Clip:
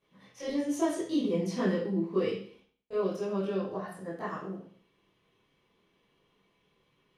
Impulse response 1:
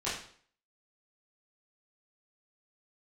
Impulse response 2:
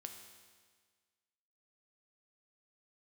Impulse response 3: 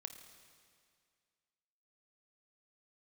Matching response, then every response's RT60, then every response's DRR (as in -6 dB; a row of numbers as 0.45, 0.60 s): 1; 0.55, 1.6, 2.1 s; -11.5, 4.0, 6.5 dB